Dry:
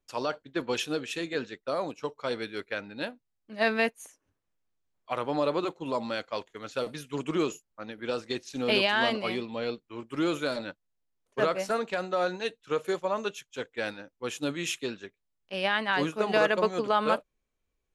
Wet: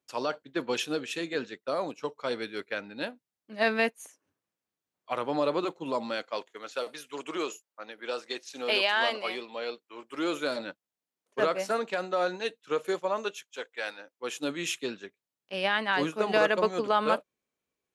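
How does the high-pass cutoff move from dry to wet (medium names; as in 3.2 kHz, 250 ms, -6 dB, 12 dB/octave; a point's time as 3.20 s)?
5.87 s 150 Hz
6.84 s 470 Hz
10.06 s 470 Hz
10.54 s 200 Hz
13.02 s 200 Hz
13.81 s 650 Hz
14.70 s 160 Hz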